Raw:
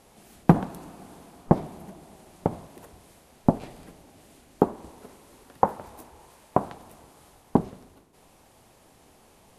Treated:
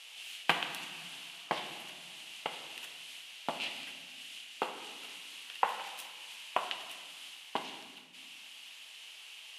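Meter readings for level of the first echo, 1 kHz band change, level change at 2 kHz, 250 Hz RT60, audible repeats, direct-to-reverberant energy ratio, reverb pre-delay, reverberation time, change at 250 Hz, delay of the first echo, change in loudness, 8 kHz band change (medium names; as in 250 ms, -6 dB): no echo, -7.5 dB, +7.5 dB, 2.2 s, no echo, 6.0 dB, 4 ms, 1.3 s, -24.5 dB, no echo, -13.0 dB, +4.5 dB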